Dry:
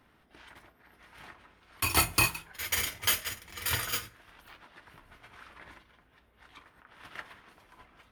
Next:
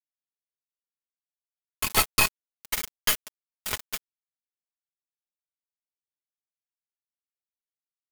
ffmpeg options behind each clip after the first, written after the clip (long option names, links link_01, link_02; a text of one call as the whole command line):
ffmpeg -i in.wav -af "aeval=exprs='val(0)*gte(abs(val(0)),0.0631)':channel_layout=same,aecho=1:1:4.7:0.54,aeval=exprs='0.355*(cos(1*acos(clip(val(0)/0.355,-1,1)))-cos(1*PI/2))+0.0708*(cos(4*acos(clip(val(0)/0.355,-1,1)))-cos(4*PI/2))':channel_layout=same,volume=2dB" out.wav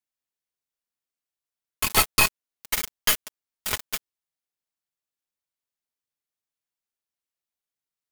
ffmpeg -i in.wav -af "asoftclip=type=tanh:threshold=-7.5dB,volume=3.5dB" out.wav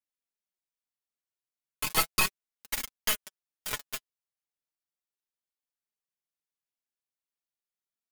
ffmpeg -i in.wav -af "flanger=delay=3.5:depth=4.8:regen=24:speed=0.36:shape=triangular,volume=-3dB" out.wav